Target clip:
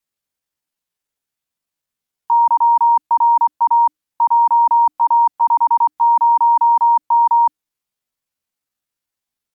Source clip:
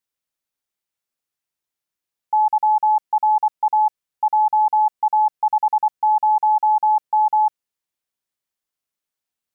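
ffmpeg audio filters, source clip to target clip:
-af "asetrate=64194,aresample=44100,atempo=0.686977,afreqshift=-310,volume=4dB"

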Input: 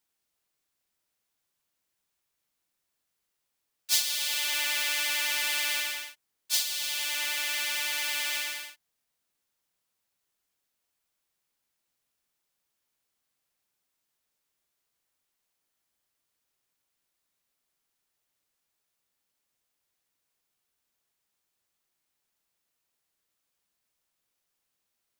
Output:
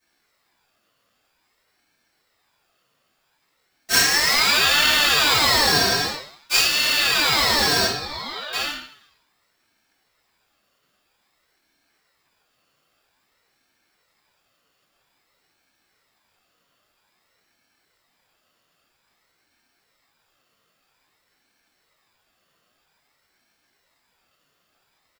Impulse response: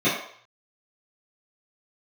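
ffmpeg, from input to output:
-filter_complex "[0:a]asplit=2[a][b];[b]aeval=exprs='(mod(15*val(0)+1,2)-1)/15':c=same,volume=-6dB[c];[a][c]amix=inputs=2:normalize=0,asettb=1/sr,asplit=3[d][e][f];[d]atrim=end=7.854[g];[e]atrim=start=7.85:end=8.53,asetpts=PTS-STARTPTS,afade=t=in:d=0.004:c=qsin,afade=t=out:st=0.676:d=0.004:c=qsin,asplit=3[h][i][j];[h]bandpass=f=530:t=q:w=8,volume=0dB[k];[i]bandpass=f=1.84k:t=q:w=8,volume=-6dB[l];[j]bandpass=f=2.48k:t=q:w=8,volume=-9dB[m];[k][l][m]amix=inputs=3:normalize=0[n];[f]atrim=start=8.526[o];[g][n]acrossfade=d=0.004:c1=hsin:c2=qsin[p];[p][o]acrossfade=d=0.004:c1=qsin:c2=hsin,asplit=6[q][r][s][t][u][v];[r]adelay=93,afreqshift=140,volume=-19.5dB[w];[s]adelay=186,afreqshift=280,volume=-24.5dB[x];[t]adelay=279,afreqshift=420,volume=-29.6dB[y];[u]adelay=372,afreqshift=560,volume=-34.6dB[z];[v]adelay=465,afreqshift=700,volume=-39.6dB[aa];[q][w][x][y][z][aa]amix=inputs=6:normalize=0,acrossover=split=910[ab][ac];[ac]acrusher=bits=3:mode=log:mix=0:aa=0.000001[ad];[ab][ad]amix=inputs=2:normalize=0[ae];[1:a]atrim=start_sample=2205,afade=t=out:st=0.29:d=0.01,atrim=end_sample=13230[af];[ae][af]afir=irnorm=-1:irlink=0,aeval=exprs='val(0)*sin(2*PI*1400*n/s+1400*0.4/0.51*sin(2*PI*0.51*n/s))':c=same"

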